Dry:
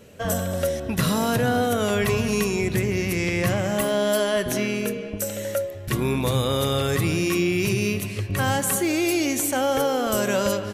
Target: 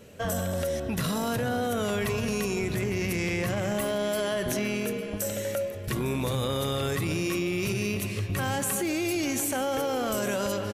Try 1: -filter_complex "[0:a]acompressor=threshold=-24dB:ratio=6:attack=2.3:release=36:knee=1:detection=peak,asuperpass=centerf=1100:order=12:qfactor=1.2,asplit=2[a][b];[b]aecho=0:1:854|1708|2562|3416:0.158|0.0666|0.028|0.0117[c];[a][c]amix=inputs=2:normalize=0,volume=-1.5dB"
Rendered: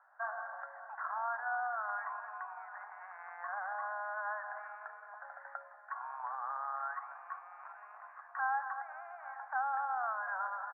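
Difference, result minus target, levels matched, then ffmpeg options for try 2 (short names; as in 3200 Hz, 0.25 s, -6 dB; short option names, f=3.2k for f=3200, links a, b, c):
1000 Hz band +10.5 dB
-filter_complex "[0:a]acompressor=threshold=-24dB:ratio=6:attack=2.3:release=36:knee=1:detection=peak,asplit=2[a][b];[b]aecho=0:1:854|1708|2562|3416:0.158|0.0666|0.028|0.0117[c];[a][c]amix=inputs=2:normalize=0,volume=-1.5dB"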